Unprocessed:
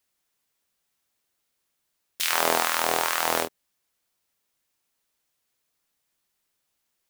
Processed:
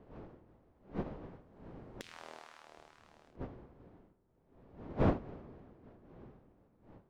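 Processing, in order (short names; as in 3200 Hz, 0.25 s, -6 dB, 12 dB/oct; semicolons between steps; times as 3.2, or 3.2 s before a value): Doppler pass-by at 2.17, 23 m/s, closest 8.2 m; wind noise 420 Hz -40 dBFS; Doppler pass-by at 2.34, 12 m/s, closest 9.2 m; flipped gate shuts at -22 dBFS, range -25 dB; air absorption 95 m; on a send: analogue delay 78 ms, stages 1024, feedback 74%, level -18.5 dB; on the sum: upward expander 2.5:1, over -46 dBFS; gain +12.5 dB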